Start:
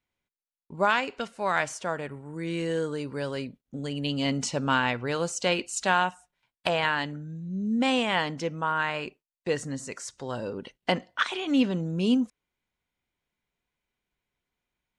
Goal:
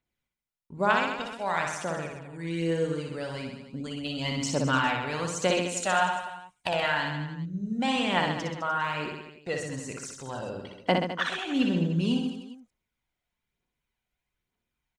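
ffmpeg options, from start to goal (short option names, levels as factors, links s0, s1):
-af "aphaser=in_gain=1:out_gain=1:delay=1.6:decay=0.49:speed=1.1:type=triangular,aecho=1:1:60|129|208.4|299.6|404.5:0.631|0.398|0.251|0.158|0.1,volume=0.631"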